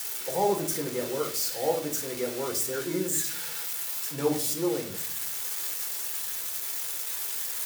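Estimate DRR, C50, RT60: 0.5 dB, 11.0 dB, 0.55 s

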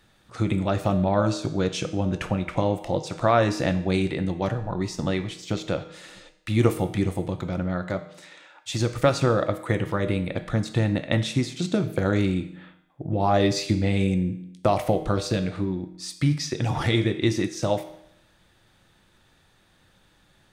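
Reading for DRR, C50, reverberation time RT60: 8.0 dB, 12.0 dB, 0.75 s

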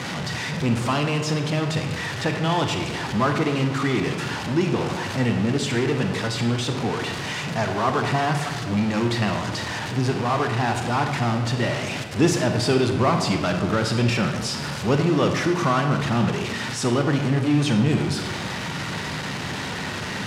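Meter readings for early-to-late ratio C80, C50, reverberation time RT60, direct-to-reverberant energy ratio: 8.0 dB, 6.0 dB, 1.2 s, 4.5 dB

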